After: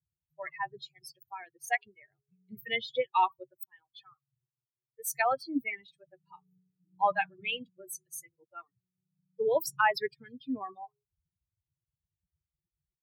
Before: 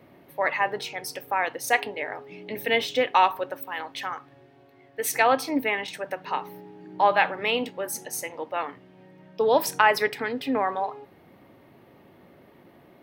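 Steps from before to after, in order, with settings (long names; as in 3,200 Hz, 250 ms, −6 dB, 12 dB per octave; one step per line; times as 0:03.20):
spectral dynamics exaggerated over time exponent 3
level −2.5 dB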